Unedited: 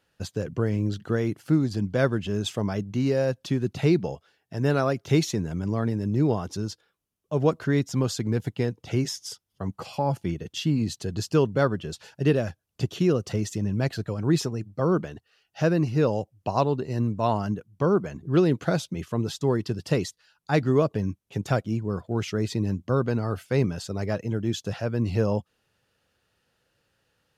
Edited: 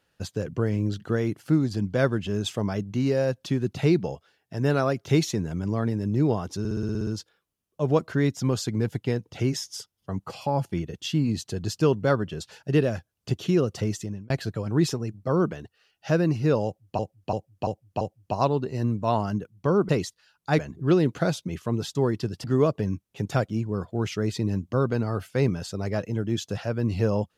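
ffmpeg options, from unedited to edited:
-filter_complex "[0:a]asplit=17[a][b][c][d][e][f][g][h][i][j][k][l][m][n][o][p][q];[a]atrim=end=6.652[r];[b]atrim=start=6.588:end=6.652[s];[c]atrim=start=6.588:end=6.652[t];[d]atrim=start=6.588:end=6.652[u];[e]atrim=start=6.588:end=6.652[v];[f]atrim=start=6.588:end=6.652[w];[g]atrim=start=6.588:end=6.652[x];[h]atrim=start=6.588:end=6.652[y];[i]atrim=start=6.588:end=13.82,asetpts=PTS-STARTPTS,afade=t=out:st=6.852:d=0.38[z];[j]atrim=start=13.82:end=16.512,asetpts=PTS-STARTPTS,afade=t=in:d=0.004:c=hsin[aa];[k]atrim=start=16.168:end=16.512[ab];[l]atrim=start=16.168:end=16.512[ac];[m]atrim=start=16.168:end=16.512[ad];[n]atrim=start=16.168:end=18.052[ae];[o]atrim=start=19.898:end=20.602[af];[p]atrim=start=18.048:end=19.902[ag];[q]atrim=start=20.598[ah];[r][s]acrossfade=d=0.004:c1=hsin:c2=hsin[ai];[ai][t]acrossfade=d=0.004:c1=hsin:c2=hsin[aj];[aj][u]acrossfade=d=0.004:c1=hsin:c2=hsin[ak];[ak][v]acrossfade=d=0.004:c1=hsin:c2=hsin[al];[al][w]acrossfade=d=0.004:c1=hsin:c2=hsin[am];[am][x]acrossfade=d=0.004:c1=hsin:c2=hsin[an];[an][y]acrossfade=d=0.004:c1=hsin:c2=hsin[ao];[z][aa]concat=n=2:v=0:a=1[ap];[ao][ap]acrossfade=d=0.004:c1=hsin:c2=hsin[aq];[aq][ab]acrossfade=d=0.004:c1=hsin:c2=hsin[ar];[ar][ac]acrossfade=d=0.004:c1=hsin:c2=hsin[as];[as][ad]acrossfade=d=0.004:c1=hsin:c2=hsin[at];[at][ae]acrossfade=d=0.004:c1=hsin:c2=hsin[au];[au][af]acrossfade=d=0.004:c1=hsin:c2=hsin[av];[av][ag]acrossfade=d=0.004:c1=hsin:c2=hsin[aw];[aw][ah]acrossfade=d=0.004:c1=hsin:c2=hsin"

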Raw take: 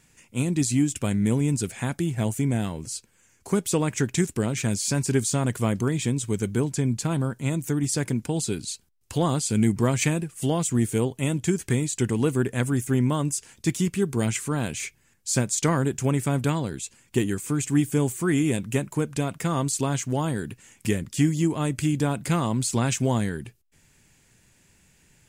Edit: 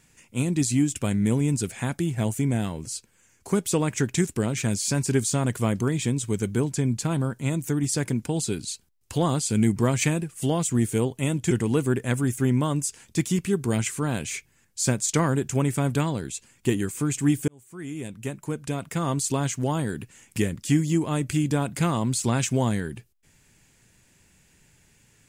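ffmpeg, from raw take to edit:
-filter_complex "[0:a]asplit=3[a][b][c];[a]atrim=end=11.512[d];[b]atrim=start=11.998:end=17.97,asetpts=PTS-STARTPTS,afade=t=out:st=5.968:d=0.004:c=hsin[e];[c]atrim=start=17.97,asetpts=PTS-STARTPTS,afade=t=in:d=1.75[f];[e][f]concat=n=2:v=0:a=1[g];[d][g]acrossfade=d=0.004:c1=hsin:c2=hsin"

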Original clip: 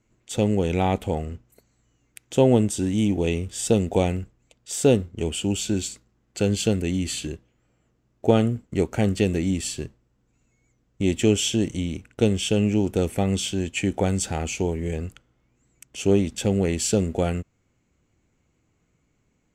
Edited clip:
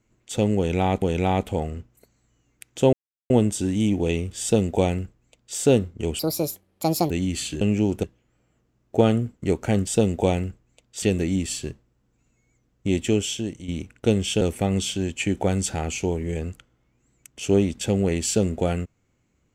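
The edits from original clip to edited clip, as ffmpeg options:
-filter_complex "[0:a]asplit=11[a][b][c][d][e][f][g][h][i][j][k];[a]atrim=end=1.022[l];[b]atrim=start=0.568:end=2.48,asetpts=PTS-STARTPTS,afade=t=out:st=1.908:d=0.004:c=hsin,apad=pad_dur=0.37[m];[c]atrim=start=2.48:end=5.374,asetpts=PTS-STARTPTS,afade=t=in:d=0.004:c=hsin[n];[d]atrim=start=5.37:end=6.82,asetpts=PTS-STARTPTS,asetrate=70119,aresample=44100[o];[e]atrim=start=6.816:end=7.332[p];[f]atrim=start=12.558:end=12.982[q];[g]atrim=start=7.328:end=9.172[r];[h]atrim=start=3.598:end=4.752[s];[i]atrim=start=9.168:end=11.83,asetpts=PTS-STARTPTS,afade=t=out:st=1.852:d=0.81:silence=0.266073[t];[j]atrim=start=11.83:end=12.562,asetpts=PTS-STARTPTS,afade=t=in:d=0.004:c=hsin:silence=0.266073[u];[k]atrim=start=12.978[v];[m][n]concat=n=2:v=0:a=1[w];[l][w]acrossfade=d=0.004:c1=hsin:c2=hsin[x];[x][o]acrossfade=d=0.004:c1=hsin:c2=hsin[y];[y][p]acrossfade=d=0.004:c1=hsin:c2=hsin[z];[z][q]acrossfade=d=0.004:c1=hsin:c2=hsin[aa];[aa][r]acrossfade=d=0.004:c1=hsin:c2=hsin[ab];[ab][s]acrossfade=d=0.004:c1=hsin:c2=hsin[ac];[t][u]concat=n=2:v=0:a=1[ad];[ac][ad]acrossfade=d=0.004:c1=hsin:c2=hsin[ae];[ae][v]acrossfade=d=0.004:c1=hsin:c2=hsin"

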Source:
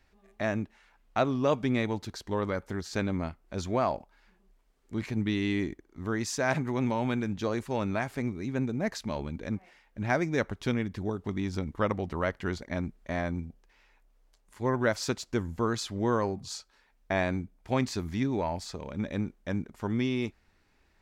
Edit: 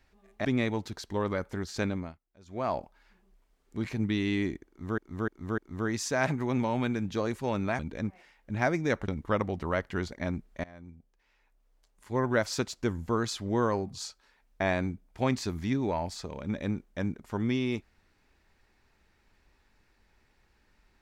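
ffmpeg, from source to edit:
-filter_complex "[0:a]asplit=10[a][b][c][d][e][f][g][h][i][j];[a]atrim=end=0.452[k];[b]atrim=start=1.618:end=3.36,asetpts=PTS-STARTPTS,afade=t=out:st=1.412:d=0.33:silence=0.0749894[l];[c]atrim=start=3.36:end=3.62,asetpts=PTS-STARTPTS,volume=-22.5dB[m];[d]atrim=start=3.62:end=6.152,asetpts=PTS-STARTPTS,afade=t=in:d=0.33:silence=0.0749894[n];[e]atrim=start=5.848:end=6.152[o];[f]atrim=start=5.848:end=6.152[p];[g]atrim=start=5.848:end=8.062[q];[h]atrim=start=9.268:end=10.562[r];[i]atrim=start=11.578:end=13.14,asetpts=PTS-STARTPTS,afade=t=out:st=1.558:d=0.004:c=hsin:silence=0.0668344[s];[j]atrim=start=13.14,asetpts=PTS-STARTPTS,afade=t=in:d=1.63:silence=0.0668344[t];[l][m][n]concat=n=3:v=0:a=1[u];[k][u]acrossfade=d=0.004:c1=hsin:c2=hsin[v];[v][o]acrossfade=d=0.004:c1=hsin:c2=hsin[w];[w][p]acrossfade=d=0.004:c1=hsin:c2=hsin[x];[x][q]acrossfade=d=0.004:c1=hsin:c2=hsin[y];[y][r]acrossfade=d=0.004:c1=hsin:c2=hsin[z];[s][t]concat=n=2:v=0:a=1[aa];[z][aa]acrossfade=d=0.004:c1=hsin:c2=hsin"

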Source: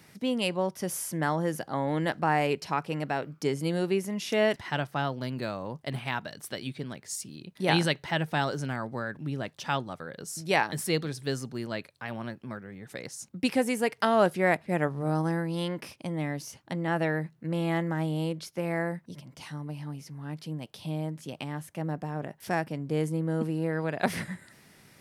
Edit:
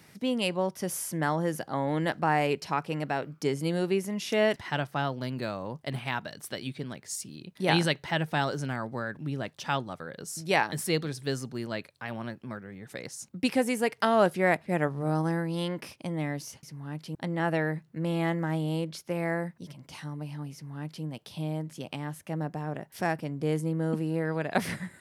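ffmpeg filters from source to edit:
-filter_complex "[0:a]asplit=3[a][b][c];[a]atrim=end=16.632[d];[b]atrim=start=20.008:end=20.532[e];[c]atrim=start=16.628[f];[d][e]acrossfade=d=0.004:c1=hsin:c2=hsin[g];[g][f]acrossfade=d=0.004:c1=hsin:c2=hsin"

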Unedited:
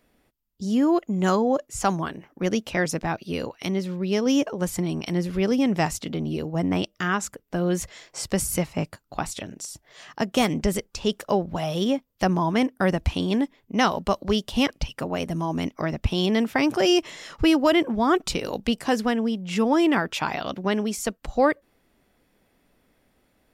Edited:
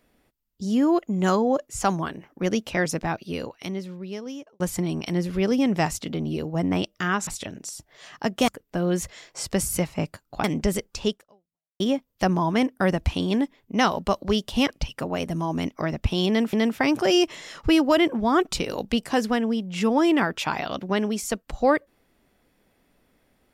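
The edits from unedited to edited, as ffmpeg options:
-filter_complex "[0:a]asplit=7[a][b][c][d][e][f][g];[a]atrim=end=4.6,asetpts=PTS-STARTPTS,afade=t=out:st=3.07:d=1.53[h];[b]atrim=start=4.6:end=7.272,asetpts=PTS-STARTPTS,afade=t=in:d=0.004:c=hsin[i];[c]atrim=start=9.228:end=10.442[j];[d]atrim=start=7.268:end=9.232[k];[e]atrim=start=10.438:end=11.8,asetpts=PTS-STARTPTS,afade=t=out:st=0.642:d=0.72:c=exp[l];[f]atrim=start=11.8:end=16.532,asetpts=PTS-STARTPTS,afade=t=in:d=0.004:c=hsin[m];[g]atrim=start=16.278[n];[h][i]concat=n=2:v=0:a=1[o];[o][j]acrossfade=d=0.004:c1=hsin:c2=hsin[p];[p][k]acrossfade=d=0.004:c1=hsin:c2=hsin[q];[l][m]concat=n=2:v=0:a=1[r];[q][r]acrossfade=d=0.004:c1=hsin:c2=hsin[s];[s][n]acrossfade=d=0.004:c1=hsin:c2=hsin"

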